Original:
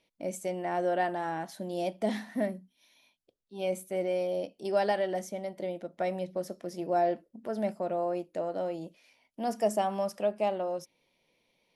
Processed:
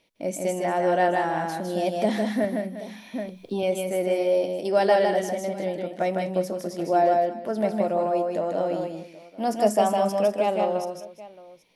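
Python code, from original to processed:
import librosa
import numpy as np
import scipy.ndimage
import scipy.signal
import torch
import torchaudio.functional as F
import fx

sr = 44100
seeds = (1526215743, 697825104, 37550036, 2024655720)

y = fx.echo_multitap(x, sr, ms=(147, 157, 199, 351, 778), db=(-17.5, -3.5, -15.0, -17.0, -20.0))
y = fx.band_squash(y, sr, depth_pct=100, at=(2.44, 3.63))
y = y * librosa.db_to_amplitude(6.0)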